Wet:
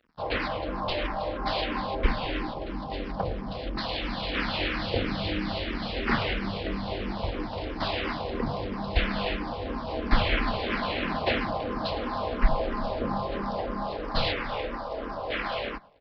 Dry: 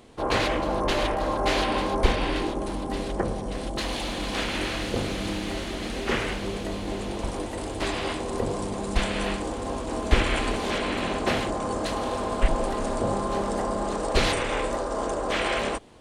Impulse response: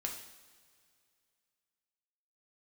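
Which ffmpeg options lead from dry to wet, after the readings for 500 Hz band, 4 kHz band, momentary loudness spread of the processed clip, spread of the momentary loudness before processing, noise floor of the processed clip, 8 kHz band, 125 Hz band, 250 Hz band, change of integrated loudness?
−4.0 dB, −1.5 dB, 6 LU, 7 LU, −35 dBFS, below −25 dB, −2.0 dB, −3.0 dB, −2.5 dB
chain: -filter_complex "[0:a]aresample=11025,aeval=exprs='sgn(val(0))*max(abs(val(0))-0.00422,0)':channel_layout=same,aresample=44100,equalizer=frequency=380:width_type=o:width=0.46:gain=-6.5,dynaudnorm=framelen=410:gausssize=17:maxgain=11.5dB,asplit=2[link_01][link_02];[link_02]adelay=107,lowpass=frequency=2400:poles=1,volume=-21dB,asplit=2[link_03][link_04];[link_04]adelay=107,lowpass=frequency=2400:poles=1,volume=0.47,asplit=2[link_05][link_06];[link_06]adelay=107,lowpass=frequency=2400:poles=1,volume=0.47[link_07];[link_03][link_05][link_07]amix=inputs=3:normalize=0[link_08];[link_01][link_08]amix=inputs=2:normalize=0,asplit=2[link_09][link_10];[link_10]afreqshift=-3[link_11];[link_09][link_11]amix=inputs=2:normalize=1,volume=-1dB"

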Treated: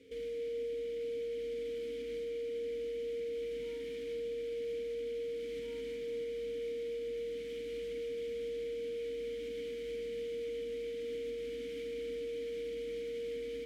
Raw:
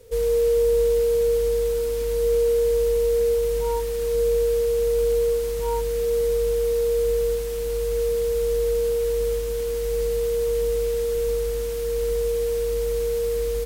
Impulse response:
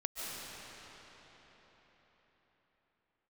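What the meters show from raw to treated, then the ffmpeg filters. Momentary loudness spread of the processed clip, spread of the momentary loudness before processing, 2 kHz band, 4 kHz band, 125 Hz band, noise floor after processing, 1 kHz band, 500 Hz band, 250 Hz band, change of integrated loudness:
2 LU, 5 LU, −9.0 dB, −11.0 dB, below −25 dB, −41 dBFS, below −30 dB, −16.5 dB, −4.5 dB, −17.0 dB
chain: -filter_complex "[0:a]asplit=3[link_01][link_02][link_03];[link_01]bandpass=frequency=270:width_type=q:width=8,volume=0dB[link_04];[link_02]bandpass=frequency=2290:width_type=q:width=8,volume=-6dB[link_05];[link_03]bandpass=frequency=3010:width_type=q:width=8,volume=-9dB[link_06];[link_04][link_05][link_06]amix=inputs=3:normalize=0,alimiter=level_in=21.5dB:limit=-24dB:level=0:latency=1:release=402,volume=-21.5dB,asplit=2[link_07][link_08];[1:a]atrim=start_sample=2205,adelay=45[link_09];[link_08][link_09]afir=irnorm=-1:irlink=0,volume=-8dB[link_10];[link_07][link_10]amix=inputs=2:normalize=0,volume=9dB"

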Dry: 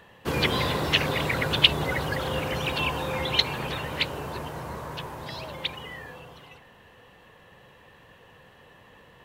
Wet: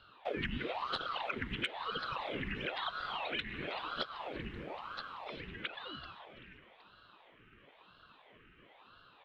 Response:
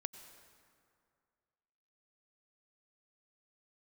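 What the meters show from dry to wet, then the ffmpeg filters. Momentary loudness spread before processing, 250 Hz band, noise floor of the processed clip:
16 LU, −11.5 dB, −63 dBFS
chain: -filter_complex "[0:a]asplit=3[link_01][link_02][link_03];[link_01]bandpass=frequency=270:width_type=q:width=8,volume=0dB[link_04];[link_02]bandpass=frequency=2290:width_type=q:width=8,volume=-6dB[link_05];[link_03]bandpass=frequency=3010:width_type=q:width=8,volume=-9dB[link_06];[link_04][link_05][link_06]amix=inputs=3:normalize=0,equalizer=frequency=9400:width=0.38:gain=-5,asplit=2[link_07][link_08];[1:a]atrim=start_sample=2205,lowpass=4400[link_09];[link_08][link_09]afir=irnorm=-1:irlink=0,volume=0dB[link_10];[link_07][link_10]amix=inputs=2:normalize=0,asubboost=boost=10.5:cutoff=63,afreqshift=-350,asplit=4[link_11][link_12][link_13][link_14];[link_12]adelay=383,afreqshift=98,volume=-21dB[link_15];[link_13]adelay=766,afreqshift=196,volume=-27.6dB[link_16];[link_14]adelay=1149,afreqshift=294,volume=-34.1dB[link_17];[link_11][link_15][link_16][link_17]amix=inputs=4:normalize=0,asoftclip=type=tanh:threshold=-15.5dB,acompressor=threshold=-41dB:ratio=4,aeval=exprs='val(0)*sin(2*PI*750*n/s+750*0.85/1*sin(2*PI*1*n/s))':channel_layout=same,volume=8dB"

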